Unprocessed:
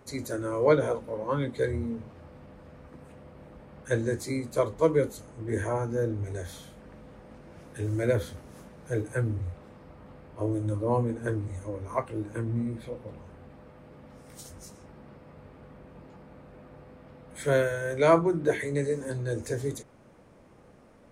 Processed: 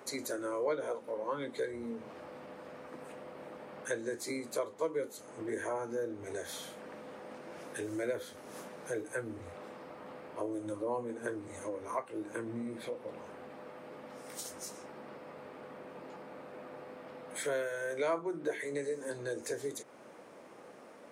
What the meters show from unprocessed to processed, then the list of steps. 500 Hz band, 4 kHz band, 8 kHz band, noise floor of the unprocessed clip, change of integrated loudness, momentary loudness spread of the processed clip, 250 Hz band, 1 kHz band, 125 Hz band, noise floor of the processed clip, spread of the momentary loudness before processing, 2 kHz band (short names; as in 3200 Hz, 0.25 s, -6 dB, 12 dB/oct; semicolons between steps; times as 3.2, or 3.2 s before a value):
-8.0 dB, -2.0 dB, 0.0 dB, -55 dBFS, -10.5 dB, 14 LU, -9.0 dB, -7.5 dB, -21.0 dB, -53 dBFS, 22 LU, -5.5 dB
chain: HPF 340 Hz 12 dB/oct; compressor 2.5:1, threshold -44 dBFS, peak gain reduction 18.5 dB; gain +5.5 dB